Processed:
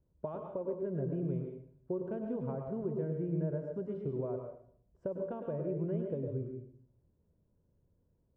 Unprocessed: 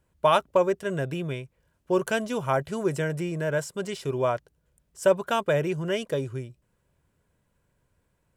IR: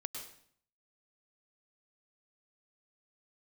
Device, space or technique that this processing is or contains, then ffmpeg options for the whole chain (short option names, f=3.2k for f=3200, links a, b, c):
television next door: -filter_complex "[0:a]acompressor=threshold=-29dB:ratio=4,lowpass=470[a];[1:a]atrim=start_sample=2205[b];[a][b]afir=irnorm=-1:irlink=0"